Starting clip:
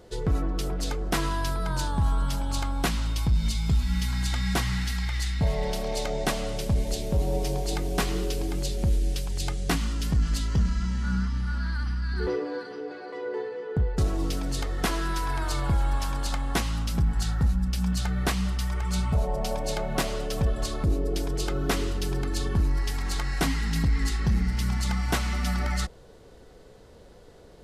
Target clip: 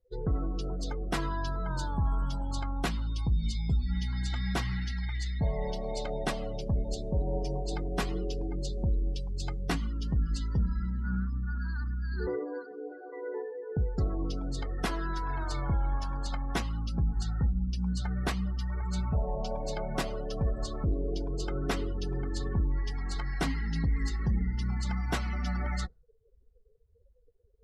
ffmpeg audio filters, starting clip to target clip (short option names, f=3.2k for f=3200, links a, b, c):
-af "afftdn=nr=35:nf=-36,volume=-4.5dB"